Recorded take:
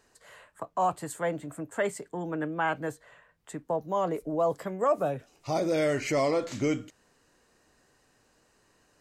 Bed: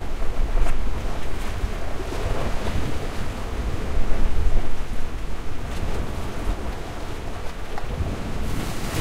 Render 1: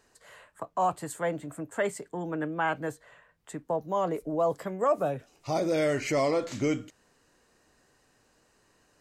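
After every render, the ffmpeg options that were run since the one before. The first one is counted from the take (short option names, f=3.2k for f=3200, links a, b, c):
-af anull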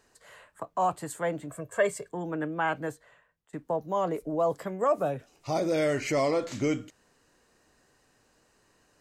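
-filter_complex "[0:a]asettb=1/sr,asplit=3[a][b][c];[a]atrim=end=1.514[d];[b]atrim=start=1.51:end=2.11,asetpts=PTS-STARTPTS,afade=t=in:d=0.004:c=qsin,afade=t=out:st=0.596:d=0.004:c=qsin,aecho=1:1:1.8:0.8,atrim=end_sample=26460[e];[c]atrim=start=2.106[f];[d][e]acrossfade=d=0.004:c1=hsin:c2=qsin[g];[g][f]acrossfade=d=0.004:c1=qsin:c2=hsin,asplit=2[h][i];[h]atrim=end=3.53,asetpts=PTS-STARTPTS,afade=t=out:st=2.84:d=0.69:silence=0.0944061[j];[i]atrim=start=3.53,asetpts=PTS-STARTPTS,afade=t=in:d=0.004:c=hsin:silence=0.0944061[k];[j][k]concat=n=2:v=0:a=1"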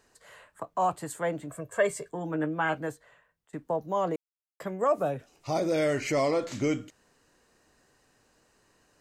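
-filter_complex "[0:a]asettb=1/sr,asplit=3[a][b][c];[a]atrim=end=1.894[d];[b]atrim=start=1.89:end=2.78,asetpts=PTS-STARTPTS,afade=t=in:d=0.004:c=qsin,afade=t=out:st=0.886:d=0.004:c=qsin,asplit=2[e][f];[f]adelay=13,volume=-7dB[g];[e][g]amix=inputs=2:normalize=0,atrim=end_sample=39249[h];[c]atrim=start=2.776[i];[d][h]acrossfade=d=0.004:c1=hsin:c2=qsin[j];[j][i]acrossfade=d=0.004:c1=qsin:c2=hsin,asplit=3[k][l][m];[k]atrim=end=4.16,asetpts=PTS-STARTPTS,afade=t=out:st=4.156:d=0.004:c=hsin[n];[l]atrim=start=4.16:end=4.6,asetpts=PTS-STARTPTS,volume=0[o];[m]atrim=start=4.6,asetpts=PTS-STARTPTS,afade=t=in:d=0.004:c=hsin[p];[n][o][p]concat=n=3:v=0:a=1"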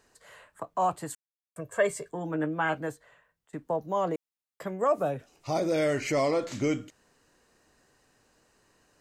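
-filter_complex "[0:a]asplit=3[a][b][c];[a]atrim=end=1.15,asetpts=PTS-STARTPTS,afade=t=out:st=1.146:d=0.004:c=hsin[d];[b]atrim=start=1.15:end=1.56,asetpts=PTS-STARTPTS,volume=0[e];[c]atrim=start=1.56,asetpts=PTS-STARTPTS,afade=t=in:d=0.004:c=hsin[f];[d][e][f]concat=n=3:v=0:a=1"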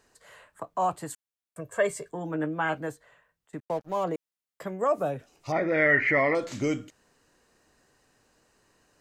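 -filter_complex "[0:a]asettb=1/sr,asplit=3[a][b][c];[a]atrim=end=3.604[d];[b]atrim=start=3.6:end=4.04,asetpts=PTS-STARTPTS,afade=t=in:d=0.004:c=qsin,afade=t=out:st=0.436:d=0.004:c=qsin,aeval=exprs='sgn(val(0))*max(abs(val(0))-0.00531,0)':c=same[e];[c]atrim=start=4.036[f];[d][e]acrossfade=d=0.004:c1=hsin:c2=qsin[g];[g][f]acrossfade=d=0.004:c1=qsin:c2=hsin,asettb=1/sr,asplit=3[h][i][j];[h]atrim=end=5.524[k];[i]atrim=start=5.52:end=6.35,asetpts=PTS-STARTPTS,afade=t=in:d=0.004:c=qsin,afade=t=out:st=0.826:d=0.004:c=qsin,lowpass=f=1.9k:t=q:w=10[l];[j]atrim=start=6.346[m];[k][l]acrossfade=d=0.004:c1=hsin:c2=qsin[n];[n][m]acrossfade=d=0.004:c1=qsin:c2=hsin"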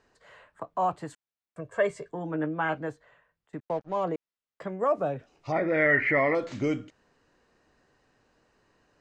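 -af "lowpass=6.2k,highshelf=f=4.8k:g=-9"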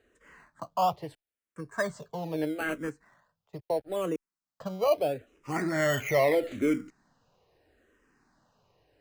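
-filter_complex "[0:a]asplit=2[a][b];[b]acrusher=samples=17:mix=1:aa=0.000001:lfo=1:lforange=17:lforate=0.47,volume=-8dB[c];[a][c]amix=inputs=2:normalize=0,asplit=2[d][e];[e]afreqshift=-0.77[f];[d][f]amix=inputs=2:normalize=1"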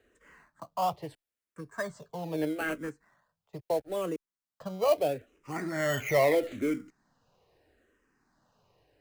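-filter_complex "[0:a]tremolo=f=0.8:d=0.43,acrossover=split=350|2600[a][b][c];[b]acrusher=bits=5:mode=log:mix=0:aa=0.000001[d];[a][d][c]amix=inputs=3:normalize=0"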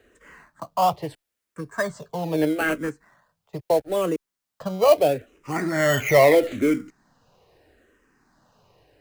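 -af "volume=9dB"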